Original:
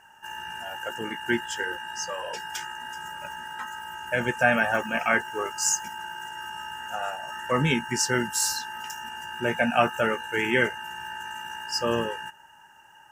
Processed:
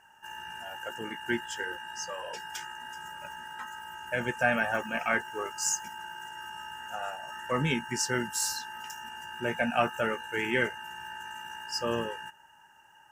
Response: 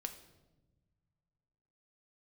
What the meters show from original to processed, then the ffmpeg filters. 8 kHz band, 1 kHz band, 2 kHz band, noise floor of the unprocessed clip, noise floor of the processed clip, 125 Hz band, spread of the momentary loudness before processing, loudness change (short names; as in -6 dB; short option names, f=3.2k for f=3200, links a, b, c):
-5.0 dB, -5.0 dB, -5.0 dB, -53 dBFS, -58 dBFS, -5.0 dB, 13 LU, -5.0 dB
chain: -af "aeval=exprs='0.562*(cos(1*acos(clip(val(0)/0.562,-1,1)))-cos(1*PI/2))+0.00447*(cos(6*acos(clip(val(0)/0.562,-1,1)))-cos(6*PI/2))':c=same,volume=-5dB"